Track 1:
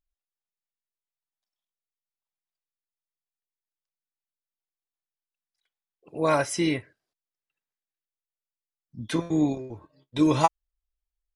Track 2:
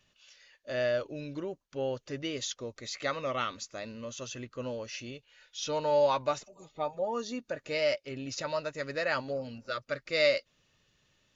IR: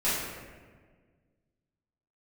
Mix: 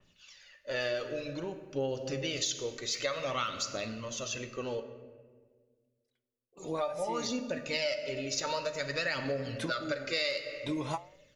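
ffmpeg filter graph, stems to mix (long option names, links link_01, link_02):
-filter_complex "[0:a]acompressor=threshold=-26dB:ratio=2.5,flanger=delay=8.6:depth=3.3:regen=-82:speed=0.73:shape=sinusoidal,adelay=500,volume=-1.5dB[link_01];[1:a]bandreject=frequency=50:width_type=h:width=6,bandreject=frequency=100:width_type=h:width=6,bandreject=frequency=150:width_type=h:width=6,aphaser=in_gain=1:out_gain=1:delay=2.7:decay=0.5:speed=0.54:type=triangular,adynamicequalizer=threshold=0.00562:dfrequency=2600:dqfactor=0.7:tfrequency=2600:tqfactor=0.7:attack=5:release=100:ratio=0.375:range=3.5:mode=boostabove:tftype=highshelf,volume=0dB,asplit=3[link_02][link_03][link_04];[link_02]atrim=end=4.8,asetpts=PTS-STARTPTS,afade=type=out:start_time=4.796:duration=0.004:curve=hsin[link_05];[link_03]atrim=start=4.8:end=6.57,asetpts=PTS-STARTPTS,volume=0[link_06];[link_04]atrim=start=6.57,asetpts=PTS-STARTPTS,afade=type=in:duration=0.004:curve=hsin[link_07];[link_05][link_06][link_07]concat=n=3:v=0:a=1,asplit=3[link_08][link_09][link_10];[link_09]volume=-18dB[link_11];[link_10]apad=whole_len=522996[link_12];[link_01][link_12]sidechaincompress=threshold=-38dB:ratio=8:attack=16:release=243[link_13];[2:a]atrim=start_sample=2205[link_14];[link_11][link_14]afir=irnorm=-1:irlink=0[link_15];[link_13][link_08][link_15]amix=inputs=3:normalize=0,acompressor=threshold=-29dB:ratio=6"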